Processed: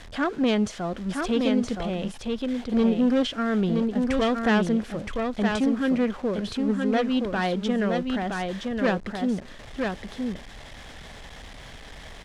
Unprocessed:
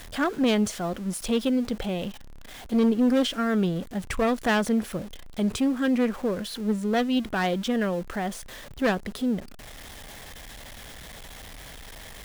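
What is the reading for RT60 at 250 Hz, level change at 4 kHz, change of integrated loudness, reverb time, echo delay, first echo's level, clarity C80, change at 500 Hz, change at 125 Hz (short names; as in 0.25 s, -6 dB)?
none, -0.5 dB, +0.5 dB, none, 0.969 s, -4.0 dB, none, +1.5 dB, +1.5 dB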